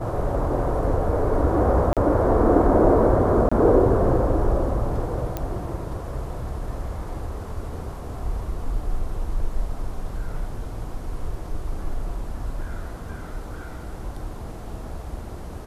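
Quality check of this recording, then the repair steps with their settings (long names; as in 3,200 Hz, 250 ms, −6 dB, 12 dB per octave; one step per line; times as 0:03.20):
0:01.93–0:01.97: drop-out 37 ms
0:03.49–0:03.52: drop-out 25 ms
0:05.37: click −13 dBFS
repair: click removal
repair the gap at 0:01.93, 37 ms
repair the gap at 0:03.49, 25 ms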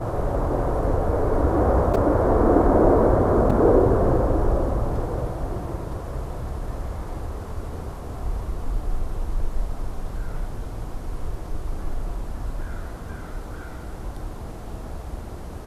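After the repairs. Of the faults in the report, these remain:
none of them is left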